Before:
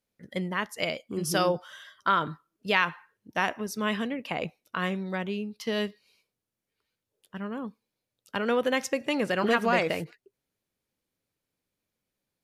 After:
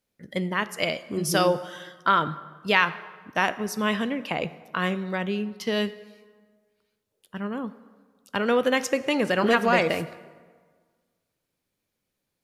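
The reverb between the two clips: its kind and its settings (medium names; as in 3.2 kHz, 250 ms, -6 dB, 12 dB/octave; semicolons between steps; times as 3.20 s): plate-style reverb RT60 1.6 s, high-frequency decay 0.65×, DRR 14.5 dB; trim +3.5 dB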